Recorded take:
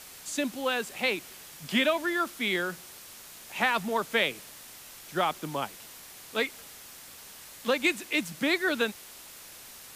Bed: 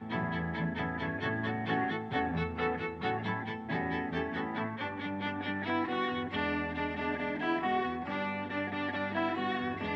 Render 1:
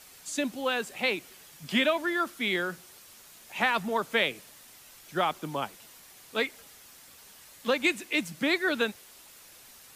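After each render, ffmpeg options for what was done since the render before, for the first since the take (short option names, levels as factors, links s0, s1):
-af "afftdn=nr=6:nf=-48"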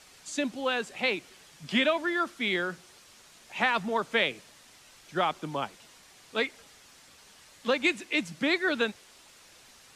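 -af "lowpass=7500"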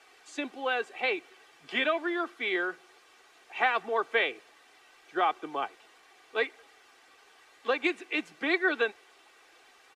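-filter_complex "[0:a]acrossover=split=300 3000:gain=0.0891 1 0.224[s0][s1][s2];[s0][s1][s2]amix=inputs=3:normalize=0,aecho=1:1:2.6:0.54"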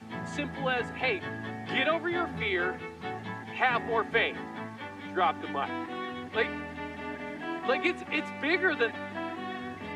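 -filter_complex "[1:a]volume=0.631[s0];[0:a][s0]amix=inputs=2:normalize=0"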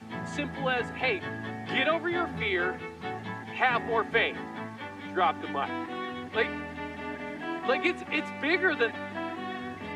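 -af "volume=1.12"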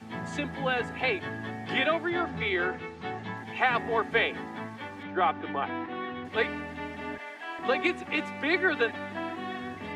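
-filter_complex "[0:a]asettb=1/sr,asplit=3[s0][s1][s2];[s0]atrim=end=2.104[s3];[s1]atrim=start=2.1:end=3.37,asetpts=PTS-STARTPTS,afade=t=in:d=0.004:c=qsin,afade=t=out:st=1.266:d=0.004:c=qsin,lowpass=7300[s4];[s2]atrim=start=3.366[s5];[s3][s4]acrossfade=d=0.004:c1=hsin:c2=qsin[s6];[s6][s5]acrossfade=d=0.004:c1=qsin:c2=hsin,asettb=1/sr,asplit=3[s7][s8][s9];[s7]atrim=end=5.034[s10];[s8]atrim=start=5.03:end=6.25,asetpts=PTS-STARTPTS,afade=t=in:d=0.004:c=qsin,afade=t=out:st=1.216:d=0.004:c=qsin,lowpass=3200[s11];[s9]atrim=start=6.246[s12];[s10][s11]acrossfade=d=0.004:c1=hsin:c2=qsin[s13];[s13][s12]acrossfade=d=0.004:c1=qsin:c2=hsin,asettb=1/sr,asplit=3[s14][s15][s16];[s14]atrim=end=7.184[s17];[s15]atrim=start=7.18:end=7.59,asetpts=PTS-STARTPTS,afade=t=in:d=0.004:c=qsin,afade=t=out:st=0.406:d=0.004:c=qsin,highpass=730[s18];[s16]atrim=start=7.586[s19];[s17][s18]acrossfade=d=0.004:c1=hsin:c2=qsin[s20];[s20][s19]acrossfade=d=0.004:c1=qsin:c2=hsin"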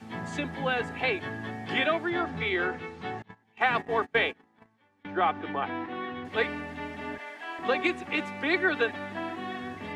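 -filter_complex "[0:a]asettb=1/sr,asplit=3[s0][s1][s2];[s0]atrim=end=3.224[s3];[s1]atrim=start=3.22:end=5.05,asetpts=PTS-STARTPTS,afade=t=in:d=0.004:c=qsin,afade=t=out:st=1.826:d=0.004:c=qsin,agate=range=0.0447:threshold=0.02:ratio=16:release=100:detection=peak[s4];[s2]atrim=start=5.046[s5];[s3][s4]acrossfade=d=0.004:c1=hsin:c2=qsin[s6];[s6][s5]acrossfade=d=0.004:c1=qsin:c2=hsin"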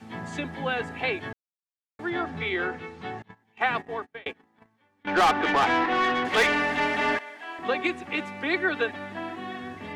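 -filter_complex "[0:a]asettb=1/sr,asplit=3[s0][s1][s2];[s0]atrim=end=5.074[s3];[s1]atrim=start=5.07:end=7.19,asetpts=PTS-STARTPTS,afade=t=in:d=0.004:c=qsin,afade=t=out:st=2.116:d=0.004:c=qsin,asplit=2[s4][s5];[s5]highpass=f=720:p=1,volume=15.8,asoftclip=type=tanh:threshold=0.224[s6];[s4][s6]amix=inputs=2:normalize=0,lowpass=f=4900:p=1,volume=0.501[s7];[s2]atrim=start=7.186[s8];[s3][s7]acrossfade=d=0.004:c1=hsin:c2=qsin[s9];[s9][s8]acrossfade=d=0.004:c1=qsin:c2=hsin,asplit=4[s10][s11][s12][s13];[s10]atrim=end=1.33,asetpts=PTS-STARTPTS,afade=t=out:st=1.326:d=0.004:c=hsin[s14];[s11]atrim=start=1.33:end=1.99,asetpts=PTS-STARTPTS,volume=0[s15];[s12]atrim=start=1.99:end=4.26,asetpts=PTS-STARTPTS,afade=t=in:d=0.004:c=hsin,afade=t=out:st=1.69:d=0.58[s16];[s13]atrim=start=4.26,asetpts=PTS-STARTPTS,afade=t=in:d=0.004:c=hsin[s17];[s14][s15][s16][s17]concat=n=4:v=0:a=1"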